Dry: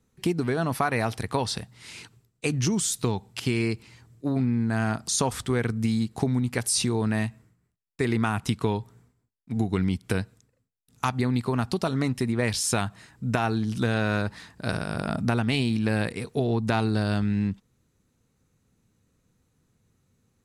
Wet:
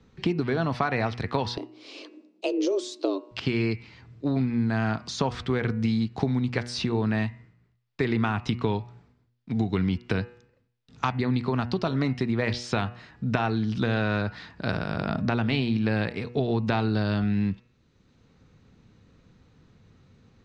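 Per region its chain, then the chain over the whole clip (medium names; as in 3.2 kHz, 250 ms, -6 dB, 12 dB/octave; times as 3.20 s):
1.57–3.31 s: peaking EQ 1.5 kHz -13 dB 1.3 oct + frequency shift +190 Hz
whole clip: low-pass 4.8 kHz 24 dB/octave; de-hum 120.8 Hz, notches 24; three bands compressed up and down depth 40%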